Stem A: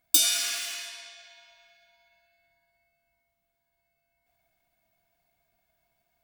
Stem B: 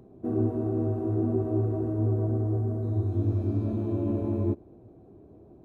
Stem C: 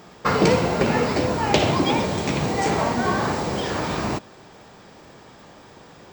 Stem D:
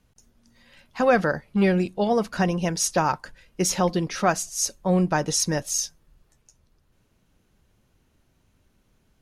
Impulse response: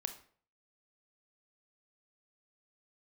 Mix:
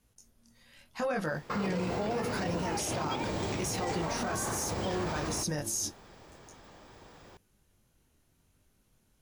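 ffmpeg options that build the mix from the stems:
-filter_complex "[1:a]adelay=1350,volume=-12.5dB[link_01];[2:a]asubboost=boost=3:cutoff=81,adelay=1250,volume=-7.5dB[link_02];[3:a]equalizer=frequency=11000:width=0.63:gain=9.5,volume=-2.5dB[link_03];[link_01][link_03]amix=inputs=2:normalize=0,flanger=delay=19:depth=8:speed=0.8,alimiter=limit=-23dB:level=0:latency=1:release=10,volume=0dB[link_04];[link_02]alimiter=limit=-22dB:level=0:latency=1:release=268,volume=0dB[link_05];[link_04][link_05]amix=inputs=2:normalize=0,alimiter=limit=-24dB:level=0:latency=1:release=27"

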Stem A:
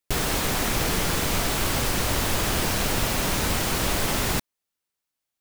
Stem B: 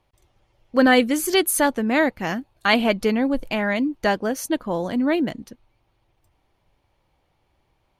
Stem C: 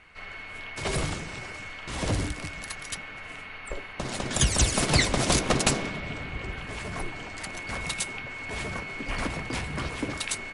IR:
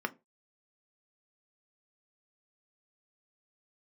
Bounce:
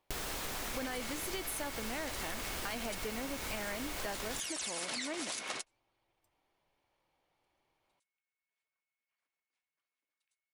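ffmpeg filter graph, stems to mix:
-filter_complex "[0:a]equalizer=frequency=130:width=0.51:gain=-7.5,volume=-8dB[link_01];[1:a]equalizer=frequency=61:width_type=o:width=2.5:gain=-5.5,volume=-8dB,asplit=2[link_02][link_03];[2:a]highpass=frequency=1500:poles=1,volume=0dB[link_04];[link_03]apad=whole_len=464421[link_05];[link_04][link_05]sidechaingate=range=-55dB:threshold=-55dB:ratio=16:detection=peak[link_06];[link_02][link_06]amix=inputs=2:normalize=0,lowshelf=frequency=180:gain=-10.5,alimiter=limit=-20dB:level=0:latency=1:release=30,volume=0dB[link_07];[link_01][link_07]amix=inputs=2:normalize=0,acompressor=threshold=-36dB:ratio=6"

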